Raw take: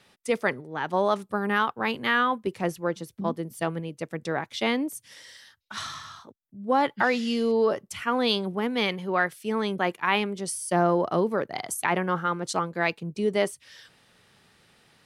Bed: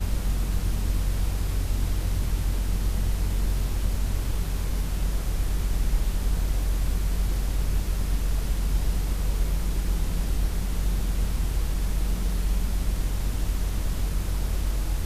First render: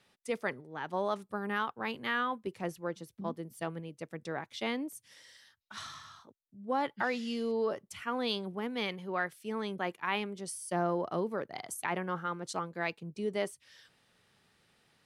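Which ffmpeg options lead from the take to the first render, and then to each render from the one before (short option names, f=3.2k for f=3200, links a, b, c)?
-af "volume=-9dB"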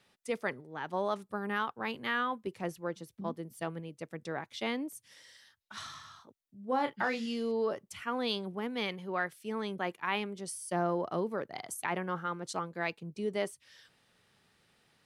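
-filter_complex "[0:a]asettb=1/sr,asplit=3[a][b][c];[a]atrim=end=6.674[d];[b]atrim=start=6.67:end=7.26,asetpts=PTS-STARTPTS,afade=t=in:d=0.004:c=qsin,afade=t=out:st=0.586:d=0.004:c=qsin,asplit=2[e][f];[f]adelay=31,volume=-7.5dB[g];[e][g]amix=inputs=2:normalize=0,atrim=end_sample=26019[h];[c]atrim=start=7.256[i];[d][h]acrossfade=d=0.004:c1=hsin:c2=qsin[j];[j][i]acrossfade=d=0.004:c1=qsin:c2=hsin"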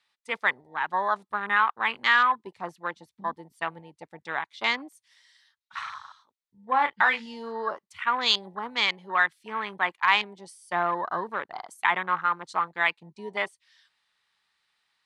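-af "afwtdn=0.00708,equalizer=f=125:t=o:w=1:g=-8,equalizer=f=250:t=o:w=1:g=-4,equalizer=f=500:t=o:w=1:g=-5,equalizer=f=1k:t=o:w=1:g=12,equalizer=f=2k:t=o:w=1:g=9,equalizer=f=4k:t=o:w=1:g=12,equalizer=f=8k:t=o:w=1:g=7"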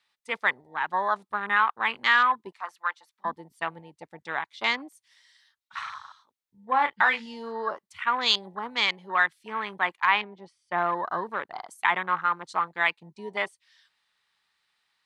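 -filter_complex "[0:a]asettb=1/sr,asplit=3[a][b][c];[a]atrim=end=2.524[d];[b]atrim=start=2.52:end=3.25,asetpts=PTS-STARTPTS,afade=t=in:d=0.004:c=qsin,afade=t=out:st=0.726:d=0.004:c=qsin,highpass=f=1.2k:t=q:w=1.8[e];[c]atrim=start=3.246[f];[d][e]acrossfade=d=0.004:c1=hsin:c2=qsin[g];[g][f]acrossfade=d=0.004:c1=qsin:c2=hsin,asettb=1/sr,asplit=3[h][i][j];[h]atrim=end=10.074[k];[i]atrim=start=10.07:end=10.78,asetpts=PTS-STARTPTS,afade=t=in:d=0.004:c=qsin,afade=t=out:st=0.706:d=0.004:c=qsin,lowpass=2.7k[l];[j]atrim=start=10.776[m];[k][l]acrossfade=d=0.004:c1=hsin:c2=qsin[n];[n][m]acrossfade=d=0.004:c1=qsin:c2=hsin"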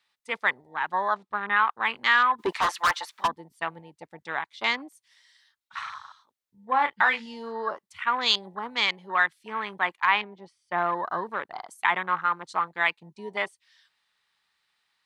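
-filter_complex "[0:a]asettb=1/sr,asplit=3[a][b][c];[a]atrim=end=1.144[d];[b]atrim=start=1.14:end=1.65,asetpts=PTS-STARTPTS,afade=t=in:d=0.004:c=qsin,afade=t=out:st=0.506:d=0.004:c=qsin,lowpass=4.9k[e];[c]atrim=start=1.646[f];[d][e]acrossfade=d=0.004:c1=hsin:c2=qsin[g];[g][f]acrossfade=d=0.004:c1=qsin:c2=hsin,asplit=3[h][i][j];[h]afade=t=out:st=2.38:d=0.02[k];[i]asplit=2[l][m];[m]highpass=f=720:p=1,volume=31dB,asoftclip=type=tanh:threshold=-14dB[n];[l][n]amix=inputs=2:normalize=0,lowpass=f=4.8k:p=1,volume=-6dB,afade=t=in:st=2.38:d=0.02,afade=t=out:st=3.26:d=0.02[o];[j]afade=t=in:st=3.26:d=0.02[p];[k][o][p]amix=inputs=3:normalize=0"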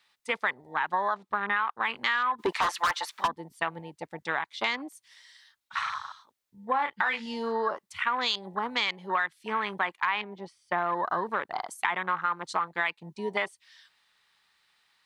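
-filter_complex "[0:a]asplit=2[a][b];[b]alimiter=limit=-18dB:level=0:latency=1:release=24,volume=-1dB[c];[a][c]amix=inputs=2:normalize=0,acompressor=threshold=-25dB:ratio=4"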